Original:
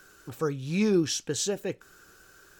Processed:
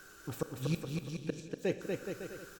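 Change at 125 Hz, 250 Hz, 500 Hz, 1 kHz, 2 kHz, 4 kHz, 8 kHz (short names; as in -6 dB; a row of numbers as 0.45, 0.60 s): -3.5, -10.0, -8.0, -7.5, -6.0, -14.0, -17.5 dB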